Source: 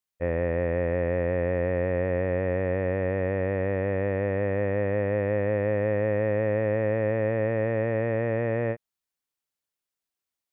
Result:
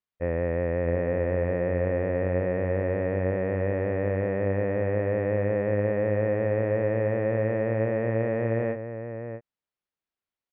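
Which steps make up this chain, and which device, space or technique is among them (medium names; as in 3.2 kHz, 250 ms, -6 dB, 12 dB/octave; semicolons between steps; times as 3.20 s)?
shout across a valley (distance through air 240 m; echo from a far wall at 110 m, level -8 dB)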